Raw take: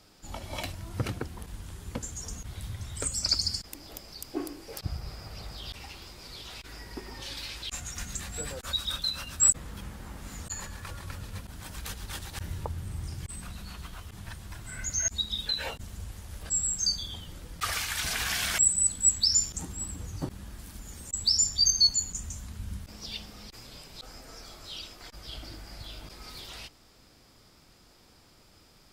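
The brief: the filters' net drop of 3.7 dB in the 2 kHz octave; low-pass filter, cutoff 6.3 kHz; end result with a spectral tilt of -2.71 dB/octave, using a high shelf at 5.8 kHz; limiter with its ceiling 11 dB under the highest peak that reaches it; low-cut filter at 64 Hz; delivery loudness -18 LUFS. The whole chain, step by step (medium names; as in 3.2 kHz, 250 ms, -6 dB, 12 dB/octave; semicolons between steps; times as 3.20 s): high-pass 64 Hz; low-pass 6.3 kHz; peaking EQ 2 kHz -4 dB; treble shelf 5.8 kHz -6 dB; trim +22 dB; peak limiter -6 dBFS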